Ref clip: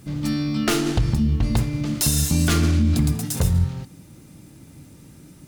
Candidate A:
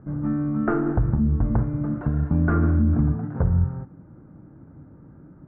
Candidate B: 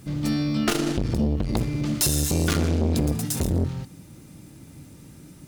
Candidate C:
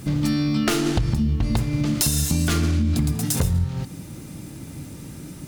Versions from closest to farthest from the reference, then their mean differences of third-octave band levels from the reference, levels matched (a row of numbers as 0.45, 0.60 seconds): B, C, A; 3.0, 4.0, 10.0 decibels